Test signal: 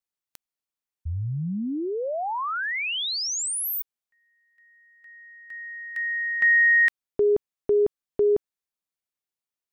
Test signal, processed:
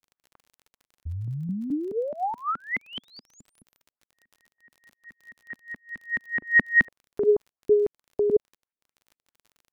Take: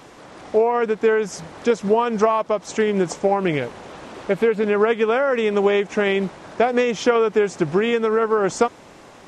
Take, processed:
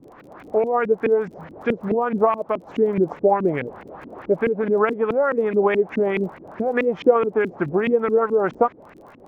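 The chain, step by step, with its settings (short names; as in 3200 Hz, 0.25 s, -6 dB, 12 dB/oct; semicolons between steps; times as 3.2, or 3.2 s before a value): LFO low-pass saw up 4.7 Hz 220–2500 Hz; crackle 31/s -39 dBFS; gain -3.5 dB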